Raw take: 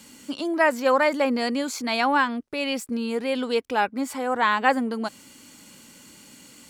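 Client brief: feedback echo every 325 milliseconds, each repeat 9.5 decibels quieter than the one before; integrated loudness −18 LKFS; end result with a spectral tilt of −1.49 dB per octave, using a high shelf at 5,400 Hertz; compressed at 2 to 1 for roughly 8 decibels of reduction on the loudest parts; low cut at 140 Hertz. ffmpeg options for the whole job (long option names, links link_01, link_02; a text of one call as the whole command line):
ffmpeg -i in.wav -af "highpass=140,highshelf=frequency=5400:gain=-6,acompressor=threshold=-30dB:ratio=2,aecho=1:1:325|650|975|1300:0.335|0.111|0.0365|0.012,volume=12dB" out.wav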